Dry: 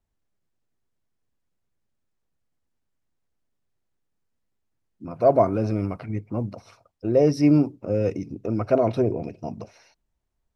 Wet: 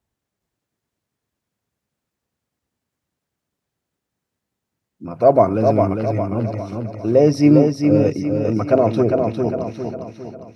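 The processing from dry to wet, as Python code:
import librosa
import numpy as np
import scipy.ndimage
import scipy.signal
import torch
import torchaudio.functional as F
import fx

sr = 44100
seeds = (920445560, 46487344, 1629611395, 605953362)

p1 = scipy.signal.sosfilt(scipy.signal.butter(2, 77.0, 'highpass', fs=sr, output='sos'), x)
p2 = p1 + fx.echo_feedback(p1, sr, ms=404, feedback_pct=46, wet_db=-4.5, dry=0)
y = F.gain(torch.from_numpy(p2), 5.0).numpy()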